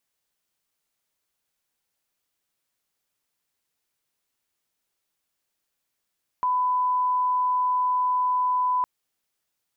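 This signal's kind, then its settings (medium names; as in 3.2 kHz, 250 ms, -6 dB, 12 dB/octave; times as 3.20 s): line-up tone -20 dBFS 2.41 s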